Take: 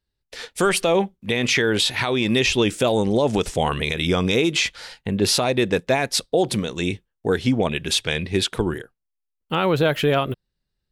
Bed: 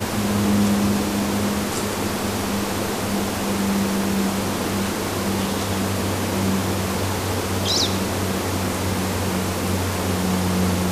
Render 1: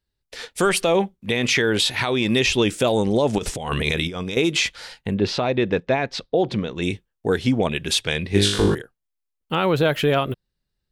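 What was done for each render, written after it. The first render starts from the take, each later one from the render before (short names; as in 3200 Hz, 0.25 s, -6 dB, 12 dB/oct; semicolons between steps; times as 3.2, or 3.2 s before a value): 3.38–4.37 negative-ratio compressor -24 dBFS, ratio -0.5; 5.14–6.82 air absorption 200 m; 8.28–8.75 flutter echo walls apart 3.4 m, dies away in 0.65 s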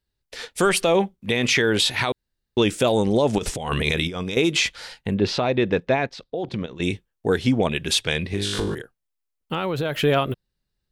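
2.12–2.57 room tone; 6.07–6.8 level quantiser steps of 13 dB; 8.33–9.97 compressor 5:1, threshold -21 dBFS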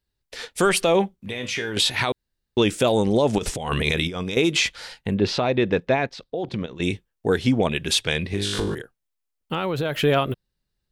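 1.28–1.77 resonator 100 Hz, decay 0.3 s, mix 80%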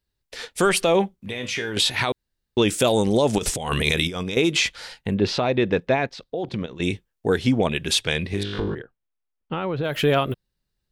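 2.68–4.23 high shelf 5100 Hz +8.5 dB; 8.43–9.84 air absorption 320 m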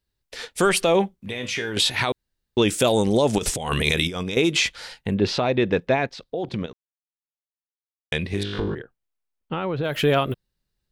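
6.73–8.12 mute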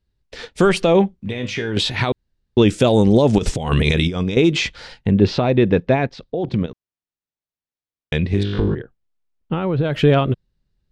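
LPF 5800 Hz 12 dB/oct; low shelf 390 Hz +10.5 dB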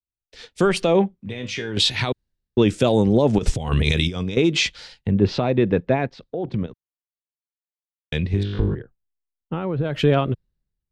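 compressor 1.5:1, threshold -22 dBFS, peak gain reduction 5.5 dB; three-band expander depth 70%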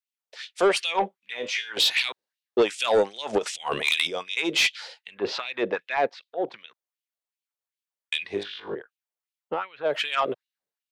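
LFO high-pass sine 2.6 Hz 480–3000 Hz; soft clip -13.5 dBFS, distortion -14 dB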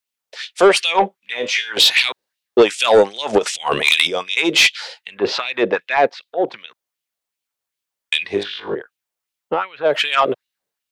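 gain +9 dB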